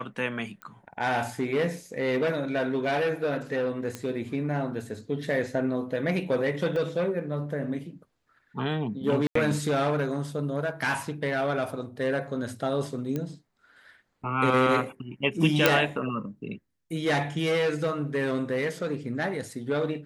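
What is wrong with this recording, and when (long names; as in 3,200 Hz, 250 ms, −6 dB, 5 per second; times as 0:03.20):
0:00.62: click −25 dBFS
0:03.95: click −18 dBFS
0:06.76: drop-out 3.6 ms
0:09.27–0:09.35: drop-out 84 ms
0:13.16: click −18 dBFS
0:15.66: click −3 dBFS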